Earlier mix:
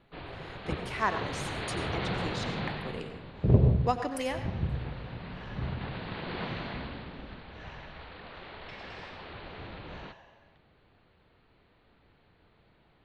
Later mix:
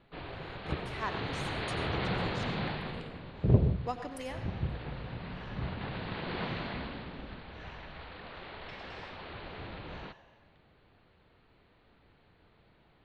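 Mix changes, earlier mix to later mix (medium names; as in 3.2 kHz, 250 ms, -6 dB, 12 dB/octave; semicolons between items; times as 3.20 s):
speech -8.0 dB; second sound: send -10.5 dB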